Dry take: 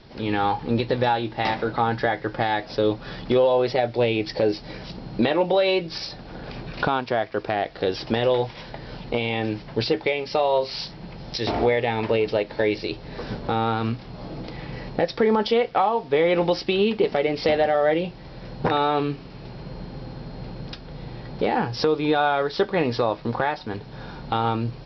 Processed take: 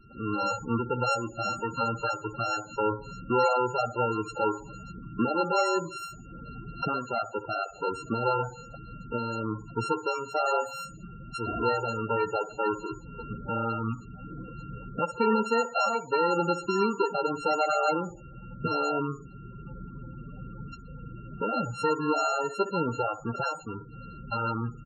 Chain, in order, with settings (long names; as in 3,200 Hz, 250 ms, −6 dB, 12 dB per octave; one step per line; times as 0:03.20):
samples sorted by size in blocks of 32 samples
repeating echo 64 ms, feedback 51%, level −14 dB
spectral peaks only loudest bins 16
level −4.5 dB